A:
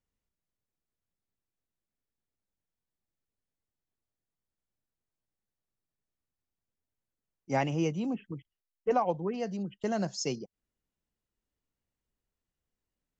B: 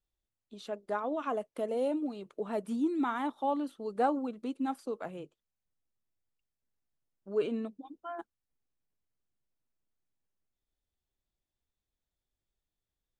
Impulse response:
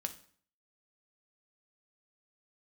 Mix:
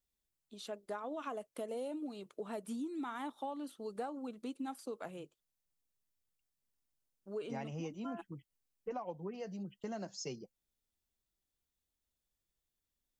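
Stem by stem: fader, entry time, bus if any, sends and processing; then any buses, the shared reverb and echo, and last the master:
−4.5 dB, 0.00 s, no send, flanger 1 Hz, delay 2.8 ms, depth 4.1 ms, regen −49%
−4.5 dB, 0.00 s, no send, high-shelf EQ 3,800 Hz +10 dB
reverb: not used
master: downward compressor 10 to 1, threshold −37 dBFS, peak gain reduction 11 dB

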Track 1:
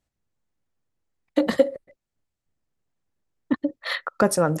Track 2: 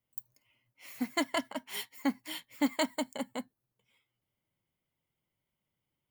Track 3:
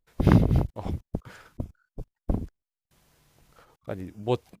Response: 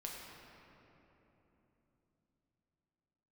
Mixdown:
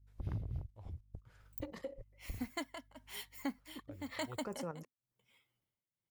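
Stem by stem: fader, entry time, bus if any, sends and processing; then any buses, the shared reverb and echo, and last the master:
−11.5 dB, 0.25 s, no send, EQ curve with evenly spaced ripples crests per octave 0.79, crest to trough 7 dB; output level in coarse steps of 10 dB
+2.0 dB, 1.40 s, no send, amplitude tremolo 1 Hz, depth 89%
−18.5 dB, 0.00 s, no send, mains hum 50 Hz, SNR 26 dB; low shelf with overshoot 140 Hz +9 dB, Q 1.5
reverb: not used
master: downward compressor 1.5 to 1, threshold −53 dBFS, peak gain reduction 11 dB

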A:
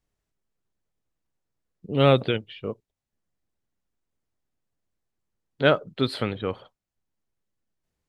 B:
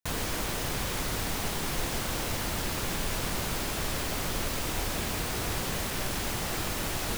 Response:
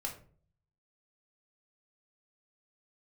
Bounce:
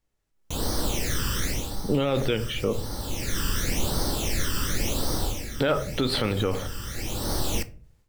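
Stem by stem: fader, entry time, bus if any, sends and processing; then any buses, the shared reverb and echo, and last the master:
−1.5 dB, 0.00 s, send −7.5 dB, downward compressor 2 to 1, threshold −27 dBFS, peak gain reduction 8.5 dB
−8.5 dB, 0.45 s, send −8.5 dB, all-pass phaser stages 12, 0.91 Hz, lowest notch 690–2,500 Hz; parametric band 5,900 Hz +6 dB 0.3 octaves; automatic ducking −16 dB, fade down 0.35 s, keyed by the first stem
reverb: on, RT60 0.45 s, pre-delay 4 ms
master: automatic gain control gain up to 12 dB; brickwall limiter −14 dBFS, peak gain reduction 11.5 dB

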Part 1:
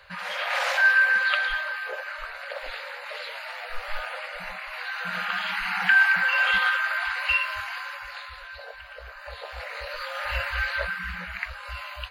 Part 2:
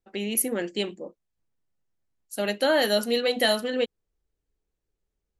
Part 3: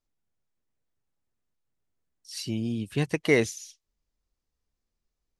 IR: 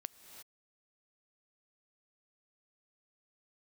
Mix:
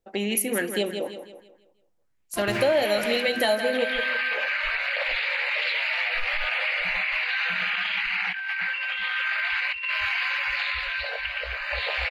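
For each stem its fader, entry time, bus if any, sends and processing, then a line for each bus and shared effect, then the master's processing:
+2.5 dB, 2.45 s, bus A, no send, no echo send, drawn EQ curve 1,400 Hz 0 dB, 2,300 Hz +14 dB, 9,400 Hz −8 dB
+2.0 dB, 0.00 s, no bus, send −11.5 dB, echo send −9 dB, auto-filter bell 1.1 Hz 550–2,500 Hz +10 dB
−11.5 dB, 0.00 s, bus A, no send, no echo send, samples sorted by size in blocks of 128 samples; low-pass that shuts in the quiet parts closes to 520 Hz, open at −22.5 dBFS; fuzz pedal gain 33 dB, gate −38 dBFS
bus A: 0.0 dB, compressor whose output falls as the input rises −23 dBFS, ratio −1; brickwall limiter −16 dBFS, peak gain reduction 10 dB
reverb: on, pre-delay 3 ms
echo: repeating echo 163 ms, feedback 40%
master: downward compressor 3 to 1, threshold −22 dBFS, peak gain reduction 10.5 dB

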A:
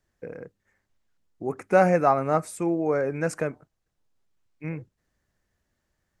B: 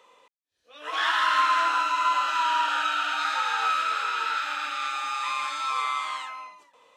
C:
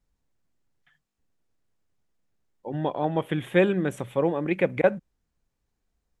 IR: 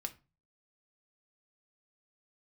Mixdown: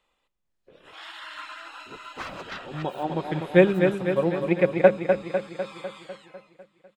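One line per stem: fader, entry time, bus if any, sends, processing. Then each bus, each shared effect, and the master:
−17.0 dB, 0.45 s, no send, no echo send, phase distortion by the signal itself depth 0.89 ms; random phases in short frames
−20.0 dB, 0.00 s, send −3 dB, echo send −18 dB, ceiling on every frequency bin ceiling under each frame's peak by 15 dB; reverb reduction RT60 0.58 s; notch filter 6,000 Hz, Q 5.1; automatic ducking −8 dB, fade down 0.85 s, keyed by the third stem
+2.5 dB, 0.00 s, no send, echo send −6 dB, comb filter 5.5 ms, depth 39%; expander for the loud parts 1.5 to 1, over −37 dBFS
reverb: on, RT60 0.30 s, pre-delay 4 ms
echo: repeating echo 250 ms, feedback 59%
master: no processing

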